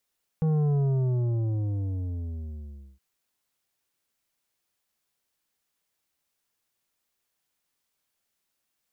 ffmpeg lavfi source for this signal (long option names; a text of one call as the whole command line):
ffmpeg -f lavfi -i "aevalsrc='0.0794*clip((2.57-t)/2.24,0,1)*tanh(2.82*sin(2*PI*160*2.57/log(65/160)*(exp(log(65/160)*t/2.57)-1)))/tanh(2.82)':duration=2.57:sample_rate=44100" out.wav